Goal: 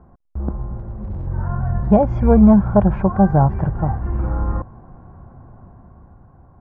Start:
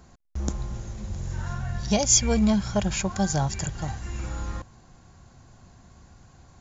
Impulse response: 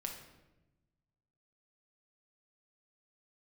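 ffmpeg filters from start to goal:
-filter_complex "[0:a]lowpass=frequency=1200:width=0.5412,lowpass=frequency=1200:width=1.3066,dynaudnorm=framelen=310:gausssize=9:maxgain=7dB,asettb=1/sr,asplit=3[link_01][link_02][link_03];[link_01]atrim=end=0.784[link_04];[link_02]atrim=start=0.78:end=1.27,asetpts=PTS-STARTPTS,afade=type=in:duration=0.004:curve=qsin,afade=type=out:start_time=0.486:duration=0.004:curve=qsin,volume=27dB,asoftclip=hard,volume=-27dB[link_05];[link_03]atrim=start=1.266[link_06];[link_04][link_05]acrossfade=duration=0.004:curve1=hsin:curve2=qsin[link_07];[link_07][link_06]acrossfade=duration=0.004:curve1=qsin:curve2=hsin,volume=4.5dB"

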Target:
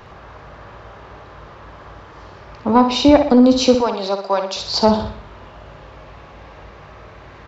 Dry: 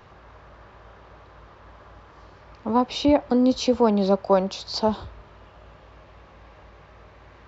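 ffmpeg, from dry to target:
ffmpeg -i in.wav -filter_complex "[0:a]asettb=1/sr,asplit=3[link_01][link_02][link_03];[link_01]atrim=end=3.754[link_04];[link_02]atrim=start=3.75:end=4.56,asetpts=PTS-STARTPTS,afade=type=in:duration=0.004:curve=qsin,afade=type=out:start_time=0.806:duration=0.004:curve=qsin,highpass=frequency=1500:poles=1[link_05];[link_03]atrim=start=4.556[link_06];[link_04][link_05]acrossfade=duration=0.004:curve1=hsin:curve2=qsin[link_07];[link_07][link_06]acrossfade=duration=0.004:curve1=qsin:curve2=hsin,aecho=1:1:61|122|183|244|305:0.398|0.183|0.0842|0.0388|0.0178,acontrast=68,volume=2dB" out.wav

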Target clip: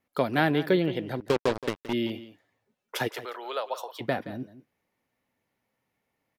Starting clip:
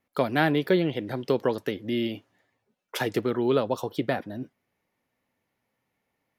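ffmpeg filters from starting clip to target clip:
ffmpeg -i in.wav -filter_complex "[0:a]asettb=1/sr,asplit=3[link_01][link_02][link_03];[link_01]atrim=end=1.204[link_04];[link_02]atrim=start=1.2:end=1.93,asetpts=PTS-STARTPTS,afade=type=in:duration=0.004:curve=qsin,afade=type=out:start_time=0.726:duration=0.004:curve=qsin,acrusher=bits=3:mix=0:aa=0.5[link_05];[link_03]atrim=start=1.926[link_06];[link_04][link_05]acrossfade=duration=0.004:curve1=hsin:curve2=qsin[link_07];[link_07][link_06]acrossfade=duration=0.004:curve1=qsin:curve2=hsin,asplit=3[link_08][link_09][link_10];[link_08]afade=type=out:start_time=3.07:duration=0.02[link_11];[link_09]highpass=frequency=610:width=0.5412,highpass=frequency=610:width=1.3066,afade=type=in:start_time=3.07:duration=0.02,afade=type=out:start_time=4:duration=0.02[link_12];[link_10]afade=type=in:start_time=4:duration=0.02[link_13];[link_11][link_12][link_13]amix=inputs=3:normalize=0,aecho=1:1:172:0.178,volume=-1dB" out.wav

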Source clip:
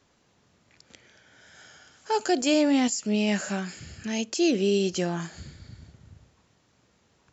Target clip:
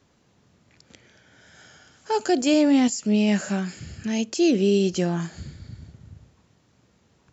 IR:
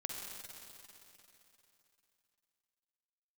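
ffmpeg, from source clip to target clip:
-af "equalizer=frequency=130:width=0.37:gain=6"

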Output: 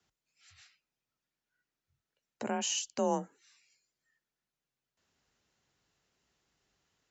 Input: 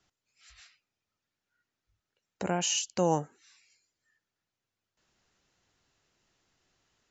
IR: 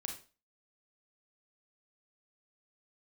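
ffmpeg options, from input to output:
-af "afreqshift=34,volume=-4dB"

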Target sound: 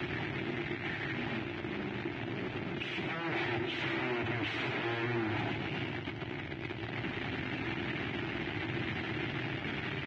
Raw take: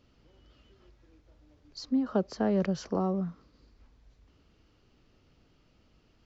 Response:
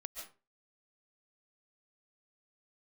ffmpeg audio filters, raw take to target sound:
-af "aeval=exprs='val(0)+0.5*0.0237*sgn(val(0))':channel_layout=same,alimiter=limit=-23.5dB:level=0:latency=1:release=487,acompressor=threshold=-34dB:ratio=8,aeval=exprs='(mod(112*val(0)+1,2)-1)/112':channel_layout=same,asetrate=27386,aresample=44100,aeval=exprs='0.0188*(cos(1*acos(clip(val(0)/0.0188,-1,1)))-cos(1*PI/2))+0.00299*(cos(5*acos(clip(val(0)/0.0188,-1,1)))-cos(5*PI/2))+0.00531*(cos(8*acos(clip(val(0)/0.0188,-1,1)))-cos(8*PI/2))':channel_layout=same,highpass=frequency=100:width=0.5412,highpass=frequency=100:width=1.3066,equalizer=frequency=120:width_type=q:width=4:gain=5,equalizer=frequency=180:width_type=q:width=4:gain=-6,equalizer=frequency=340:width_type=q:width=4:gain=9,equalizer=frequency=500:width_type=q:width=4:gain=-10,equalizer=frequency=1100:width_type=q:width=4:gain=-8,equalizer=frequency=2200:width_type=q:width=4:gain=4,lowpass=frequency=3100:width=0.5412,lowpass=frequency=3100:width=1.3066,aecho=1:1:101|116|136|899:0.188|0.282|0.282|0.141,volume=6dB" -ar 22050 -c:a libvorbis -b:a 16k

